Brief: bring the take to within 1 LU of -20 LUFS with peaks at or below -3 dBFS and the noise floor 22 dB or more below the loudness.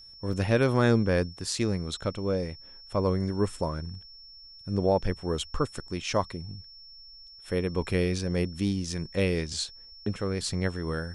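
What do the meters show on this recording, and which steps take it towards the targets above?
dropouts 1; longest dropout 2.3 ms; steady tone 5400 Hz; tone level -47 dBFS; loudness -29.0 LUFS; peak -9.0 dBFS; loudness target -20.0 LUFS
-> interpolate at 0.33, 2.3 ms; notch 5400 Hz, Q 30; gain +9 dB; limiter -3 dBFS

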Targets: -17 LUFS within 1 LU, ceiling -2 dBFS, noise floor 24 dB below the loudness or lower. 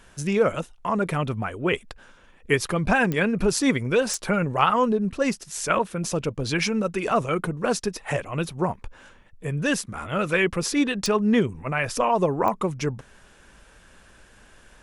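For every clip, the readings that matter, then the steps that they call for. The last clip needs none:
clicks 4; loudness -24.5 LUFS; peak -5.0 dBFS; loudness target -17.0 LUFS
-> de-click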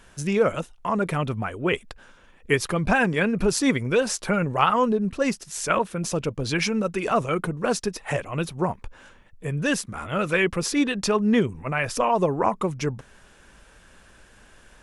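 clicks 0; loudness -24.5 LUFS; peak -5.0 dBFS; loudness target -17.0 LUFS
-> gain +7.5 dB; limiter -2 dBFS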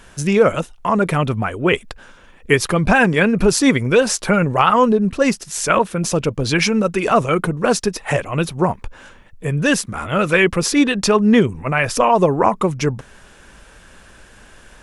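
loudness -17.0 LUFS; peak -2.0 dBFS; noise floor -46 dBFS

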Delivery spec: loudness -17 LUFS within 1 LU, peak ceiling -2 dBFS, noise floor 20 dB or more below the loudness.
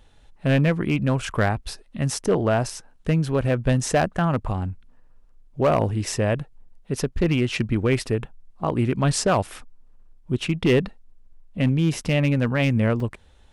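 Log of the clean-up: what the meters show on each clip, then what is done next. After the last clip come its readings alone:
clipped 0.7%; flat tops at -12.5 dBFS; dropouts 1; longest dropout 3.2 ms; loudness -23.0 LUFS; peak -12.5 dBFS; loudness target -17.0 LUFS
-> clip repair -12.5 dBFS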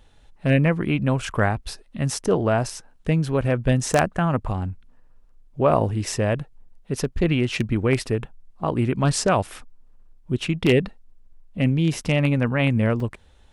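clipped 0.0%; dropouts 1; longest dropout 3.2 ms
-> interpolate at 13, 3.2 ms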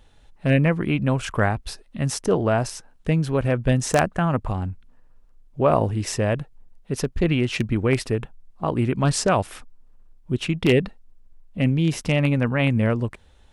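dropouts 0; loudness -23.0 LUFS; peak -3.5 dBFS; loudness target -17.0 LUFS
-> gain +6 dB; limiter -2 dBFS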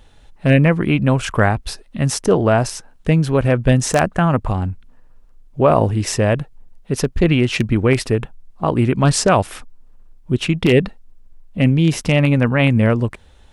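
loudness -17.0 LUFS; peak -2.0 dBFS; noise floor -47 dBFS

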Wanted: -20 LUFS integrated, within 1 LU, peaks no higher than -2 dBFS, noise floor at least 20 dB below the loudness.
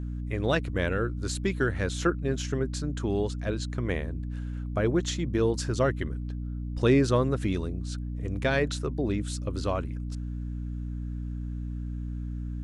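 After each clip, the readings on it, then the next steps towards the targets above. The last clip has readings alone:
hum 60 Hz; harmonics up to 300 Hz; hum level -31 dBFS; loudness -29.5 LUFS; peak -11.0 dBFS; loudness target -20.0 LUFS
-> notches 60/120/180/240/300 Hz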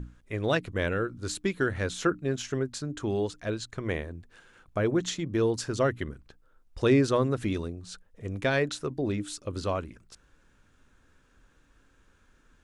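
hum none; loudness -29.5 LUFS; peak -12.0 dBFS; loudness target -20.0 LUFS
-> gain +9.5 dB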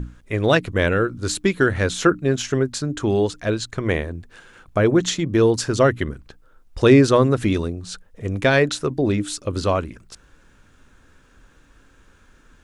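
loudness -20.0 LUFS; peak -2.5 dBFS; noise floor -54 dBFS

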